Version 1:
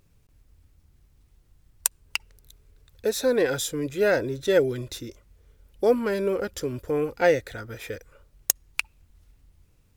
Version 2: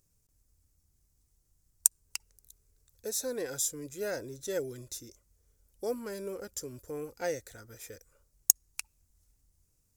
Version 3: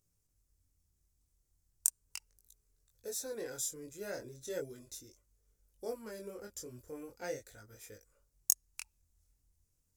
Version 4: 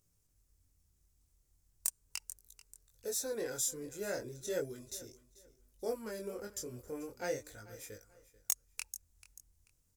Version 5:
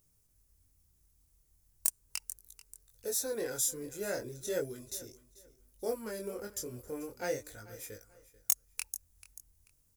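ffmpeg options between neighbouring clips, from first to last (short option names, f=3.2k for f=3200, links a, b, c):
-af "highshelf=f=4.6k:t=q:w=1.5:g=12,volume=-13.5dB"
-af "flanger=delay=19:depth=6.1:speed=0.38,volume=-3dB"
-af "aecho=1:1:438|876:0.112|0.0303,asoftclip=type=tanh:threshold=-24dB,volume=3.5dB"
-filter_complex "[0:a]asplit=2[a][b];[b]acrusher=bits=5:mode=log:mix=0:aa=0.000001,volume=-11dB[c];[a][c]amix=inputs=2:normalize=0,aexciter=amount=1.4:drive=6.7:freq=9.9k"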